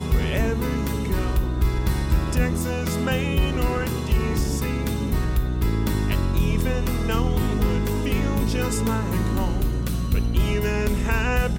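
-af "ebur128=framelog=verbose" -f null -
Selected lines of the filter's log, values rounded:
Integrated loudness:
  I:         -23.8 LUFS
  Threshold: -33.8 LUFS
Loudness range:
  LRA:         0.6 LU
  Threshold: -43.8 LUFS
  LRA low:   -24.1 LUFS
  LRA high:  -23.4 LUFS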